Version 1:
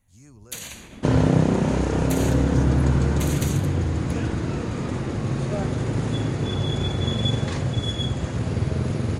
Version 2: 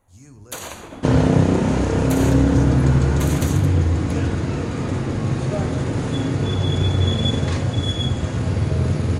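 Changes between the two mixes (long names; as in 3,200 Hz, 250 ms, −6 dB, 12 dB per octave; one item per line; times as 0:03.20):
first sound: add flat-topped bell 660 Hz +12.5 dB 2.5 octaves
reverb: on, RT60 0.75 s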